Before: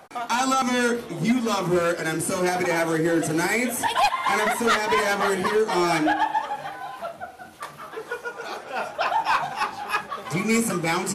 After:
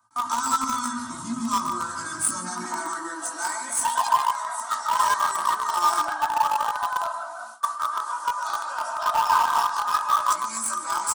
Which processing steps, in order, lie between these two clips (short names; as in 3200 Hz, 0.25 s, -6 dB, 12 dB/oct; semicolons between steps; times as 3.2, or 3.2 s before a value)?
limiter -25 dBFS, peak gain reduction 10.5 dB; on a send: darkening echo 0.147 s, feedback 45%, low-pass 3200 Hz, level -3 dB; on the sum: chorus voices 2, 0.73 Hz, delay 18 ms, depth 1.9 ms; comb 3.2 ms, depth 90%; downsampling 22050 Hz; gate with hold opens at -30 dBFS; EQ curve 150 Hz 0 dB, 270 Hz -8 dB, 430 Hz -27 dB, 620 Hz -17 dB, 1100 Hz +11 dB, 2300 Hz -15 dB, 4100 Hz -1 dB, 7700 Hz +9 dB; high-pass sweep 110 Hz -> 540 Hz, 2.11–3.26; 4.25–4.93 resonator 61 Hz, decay 0.35 s, harmonics all, mix 60%; in parallel at -10.5 dB: bit-crush 4-bit; on the sum: gain +3.5 dB